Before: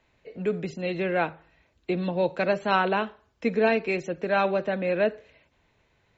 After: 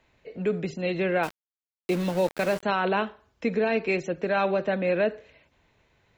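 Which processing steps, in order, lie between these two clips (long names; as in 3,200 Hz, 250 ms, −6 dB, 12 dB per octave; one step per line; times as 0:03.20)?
brickwall limiter −17 dBFS, peak gain reduction 7.5 dB
0:01.23–0:02.63: centre clipping without the shift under −34.5 dBFS
level +1.5 dB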